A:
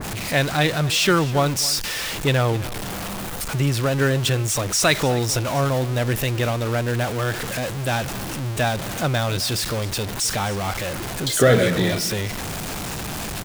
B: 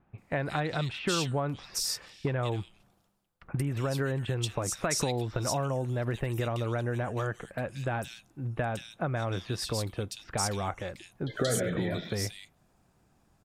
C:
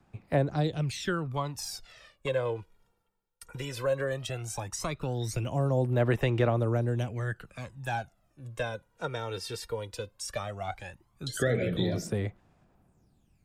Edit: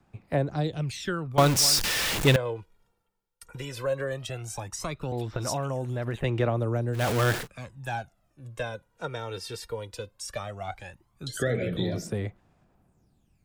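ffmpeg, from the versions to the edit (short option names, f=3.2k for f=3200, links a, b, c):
-filter_complex "[0:a]asplit=2[a][b];[2:a]asplit=4[c][d][e][f];[c]atrim=end=1.382[g];[a]atrim=start=1.378:end=2.362[h];[d]atrim=start=2.358:end=5.122[i];[1:a]atrim=start=5.118:end=6.242[j];[e]atrim=start=6.238:end=7.08[k];[b]atrim=start=6.92:end=7.48[l];[f]atrim=start=7.32[m];[g][h]acrossfade=d=0.004:c1=hsin:c2=hsin[n];[n][i]acrossfade=d=0.004:c1=hsin:c2=hsin[o];[o][j]acrossfade=d=0.004:c1=hsin:c2=hsin[p];[p][k]acrossfade=d=0.004:c1=hsin:c2=hsin[q];[q][l]acrossfade=d=0.16:c1=tri:c2=tri[r];[r][m]acrossfade=d=0.16:c1=tri:c2=tri"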